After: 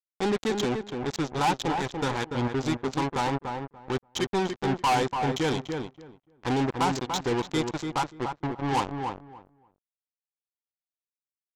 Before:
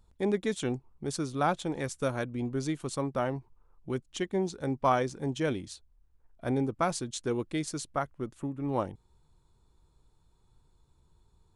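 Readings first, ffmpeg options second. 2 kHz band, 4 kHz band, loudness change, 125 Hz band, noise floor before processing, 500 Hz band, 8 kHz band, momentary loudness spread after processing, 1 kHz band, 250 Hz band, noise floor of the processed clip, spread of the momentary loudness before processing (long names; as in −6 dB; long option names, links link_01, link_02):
+6.5 dB, +9.0 dB, +4.0 dB, +3.0 dB, −68 dBFS, +2.5 dB, +2.0 dB, 9 LU, +6.5 dB, +3.5 dB, below −85 dBFS, 8 LU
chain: -filter_complex "[0:a]superequalizer=8b=0.355:9b=3.16:13b=2,acontrast=68,aresample=16000,acrusher=bits=3:mix=0:aa=0.5,aresample=44100,asoftclip=type=tanh:threshold=-20.5dB,asplit=2[link_01][link_02];[link_02]adelay=290,lowpass=frequency=1800:poles=1,volume=-5dB,asplit=2[link_03][link_04];[link_04]adelay=290,lowpass=frequency=1800:poles=1,volume=0.18,asplit=2[link_05][link_06];[link_06]adelay=290,lowpass=frequency=1800:poles=1,volume=0.18[link_07];[link_01][link_03][link_05][link_07]amix=inputs=4:normalize=0"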